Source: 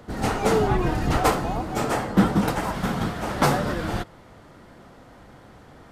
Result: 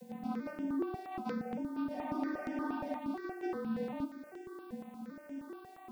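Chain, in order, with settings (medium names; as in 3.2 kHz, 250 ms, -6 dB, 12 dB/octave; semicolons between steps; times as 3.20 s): vocoder on a broken chord minor triad, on C4, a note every 392 ms; elliptic low-pass 5.4 kHz; frequency shift -34 Hz; high-pass 130 Hz 6 dB/octave; bass shelf 220 Hz +10.5 dB; reverse; compression 6:1, threshold -36 dBFS, peak gain reduction 19.5 dB; reverse; band-stop 3.2 kHz, Q 13; word length cut 12-bit, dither triangular; flange 0.39 Hz, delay 5.7 ms, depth 8.7 ms, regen +64%; spectral freeze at 1.95 s, 1.03 s; stepped phaser 8.5 Hz 340–4100 Hz; trim +7 dB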